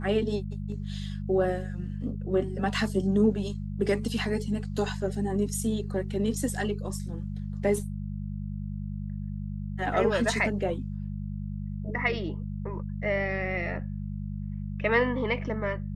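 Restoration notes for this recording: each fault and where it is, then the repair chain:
hum 50 Hz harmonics 4 -34 dBFS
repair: de-hum 50 Hz, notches 4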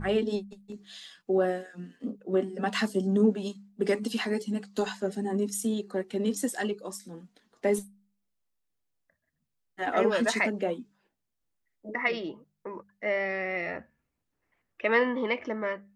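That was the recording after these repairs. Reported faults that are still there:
nothing left

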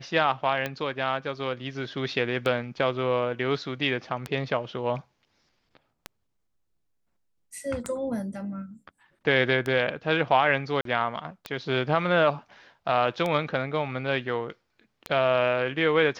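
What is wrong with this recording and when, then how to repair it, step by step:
tick 33 1/3 rpm -15 dBFS
10.81–10.85 s: dropout 43 ms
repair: de-click; interpolate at 10.81 s, 43 ms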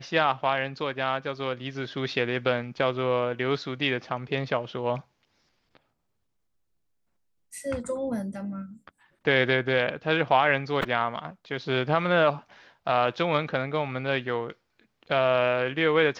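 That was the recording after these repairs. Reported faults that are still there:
nothing left

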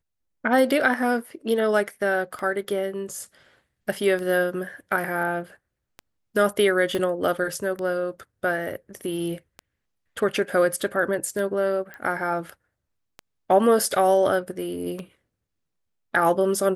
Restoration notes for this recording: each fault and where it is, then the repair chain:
tick 33 1/3 rpm
6.95 s: pop -14 dBFS
11.94 s: pop -24 dBFS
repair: de-click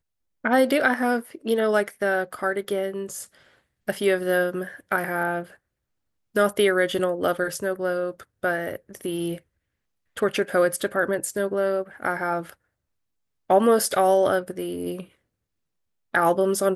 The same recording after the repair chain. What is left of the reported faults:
6.95 s: pop

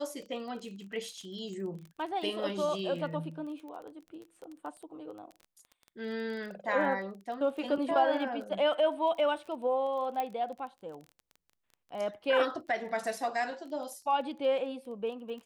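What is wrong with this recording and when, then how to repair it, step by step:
crackle 21 per s -41 dBFS
10.20 s: pop -20 dBFS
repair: de-click

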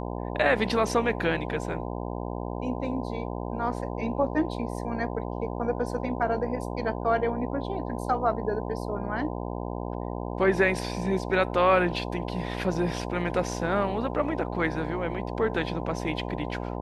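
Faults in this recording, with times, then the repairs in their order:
buzz 60 Hz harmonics 17 -33 dBFS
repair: de-hum 60 Hz, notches 17

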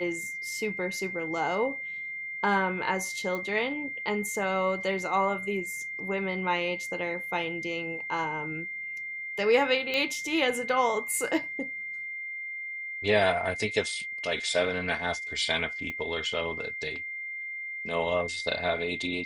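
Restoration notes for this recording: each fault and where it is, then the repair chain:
whine 2.1 kHz -34 dBFS
3.35 s: pop -21 dBFS
9.94 s: pop -16 dBFS
15.90 s: pop -23 dBFS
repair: de-click; band-stop 2.1 kHz, Q 30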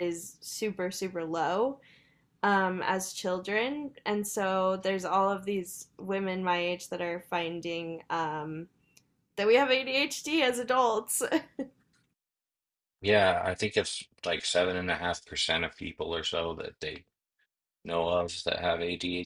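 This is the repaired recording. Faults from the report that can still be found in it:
15.90 s: pop

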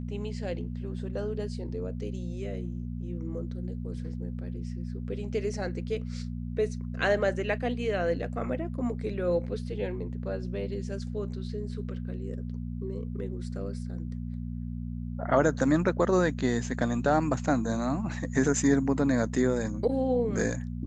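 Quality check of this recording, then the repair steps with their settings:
hum 60 Hz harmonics 4 -35 dBFS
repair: de-hum 60 Hz, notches 4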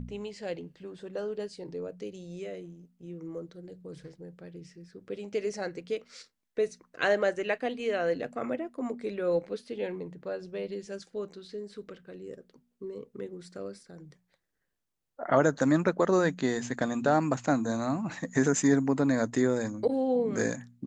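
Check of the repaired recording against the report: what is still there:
nothing left

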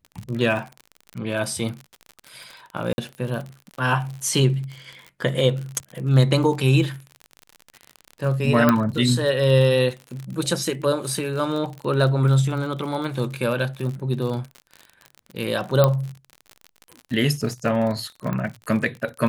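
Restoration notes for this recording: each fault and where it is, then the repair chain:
crackle 48 per s -29 dBFS
2.93–2.98 s: dropout 51 ms
8.69 s: pop -4 dBFS
15.84 s: pop -4 dBFS
18.33 s: pop -16 dBFS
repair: de-click; interpolate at 2.93 s, 51 ms

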